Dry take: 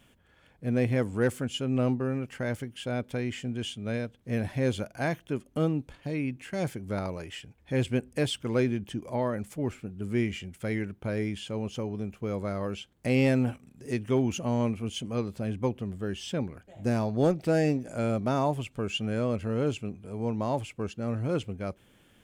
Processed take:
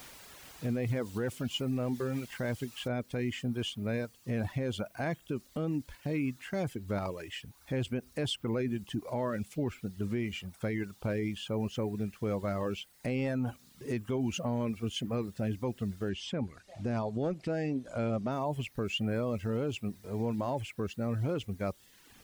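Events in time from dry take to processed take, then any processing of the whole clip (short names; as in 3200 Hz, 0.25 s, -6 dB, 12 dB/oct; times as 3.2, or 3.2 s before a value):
2.88 noise floor step -47 dB -55 dB
16.09–18.32 LPF 7300 Hz
whole clip: reverb removal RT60 0.78 s; high shelf 5200 Hz -8.5 dB; limiter -26.5 dBFS; gain +2 dB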